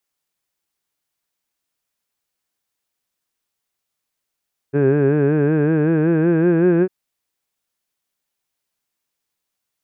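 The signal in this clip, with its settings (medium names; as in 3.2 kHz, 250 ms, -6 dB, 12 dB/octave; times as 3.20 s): formant vowel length 2.15 s, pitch 137 Hz, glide +4.5 st, F1 390 Hz, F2 1.6 kHz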